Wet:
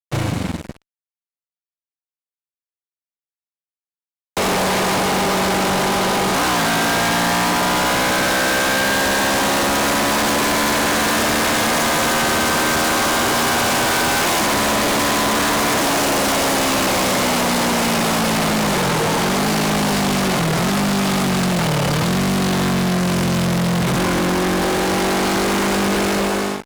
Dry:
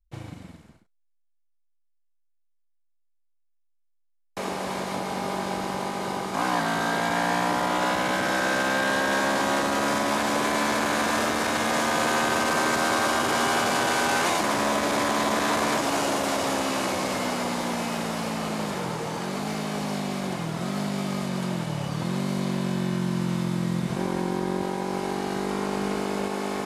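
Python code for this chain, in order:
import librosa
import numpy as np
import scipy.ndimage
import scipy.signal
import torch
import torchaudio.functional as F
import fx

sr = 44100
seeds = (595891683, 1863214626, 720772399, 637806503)

y = fx.fade_out_tail(x, sr, length_s=0.74)
y = y + 10.0 ** (-19.0 / 20.0) * np.pad(y, (int(121 * sr / 1000.0), 0))[:len(y)]
y = fx.fuzz(y, sr, gain_db=42.0, gate_db=-51.0)
y = y * 10.0 ** (-3.5 / 20.0)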